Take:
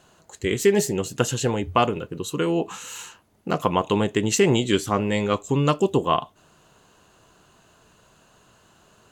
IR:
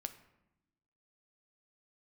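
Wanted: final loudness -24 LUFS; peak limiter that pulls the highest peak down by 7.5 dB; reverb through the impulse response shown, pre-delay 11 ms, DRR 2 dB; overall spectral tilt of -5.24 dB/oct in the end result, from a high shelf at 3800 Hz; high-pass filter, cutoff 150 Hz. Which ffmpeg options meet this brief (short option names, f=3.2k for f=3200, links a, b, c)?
-filter_complex "[0:a]highpass=150,highshelf=f=3.8k:g=-8.5,alimiter=limit=-12.5dB:level=0:latency=1,asplit=2[a][b];[1:a]atrim=start_sample=2205,adelay=11[c];[b][c]afir=irnorm=-1:irlink=0,volume=0.5dB[d];[a][d]amix=inputs=2:normalize=0"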